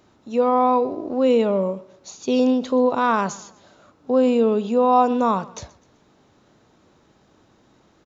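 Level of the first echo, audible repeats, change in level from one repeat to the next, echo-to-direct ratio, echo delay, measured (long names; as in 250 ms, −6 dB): −21.0 dB, 2, −8.0 dB, −20.0 dB, 126 ms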